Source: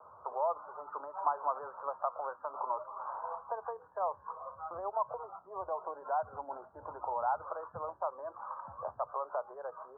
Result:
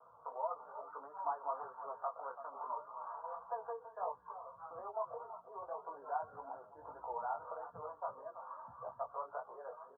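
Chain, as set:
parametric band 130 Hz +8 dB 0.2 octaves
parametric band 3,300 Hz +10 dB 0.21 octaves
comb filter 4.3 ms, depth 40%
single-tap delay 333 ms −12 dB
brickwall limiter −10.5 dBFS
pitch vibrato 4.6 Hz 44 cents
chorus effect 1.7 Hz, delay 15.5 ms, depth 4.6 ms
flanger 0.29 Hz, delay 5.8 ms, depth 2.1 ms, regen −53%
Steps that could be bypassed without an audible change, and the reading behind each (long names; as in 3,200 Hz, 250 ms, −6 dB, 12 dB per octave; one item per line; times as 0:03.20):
parametric band 3,300 Hz: nothing at its input above 1,600 Hz
brickwall limiter −10.5 dBFS: peak of its input −16.5 dBFS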